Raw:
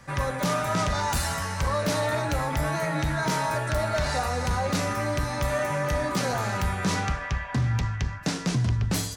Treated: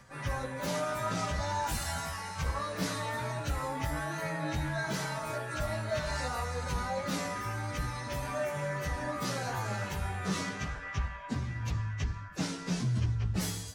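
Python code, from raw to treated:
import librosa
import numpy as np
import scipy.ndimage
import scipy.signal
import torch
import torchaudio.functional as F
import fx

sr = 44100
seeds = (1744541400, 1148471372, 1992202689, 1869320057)

y = fx.stretch_vocoder_free(x, sr, factor=1.5)
y = F.gain(torch.from_numpy(y), -4.5).numpy()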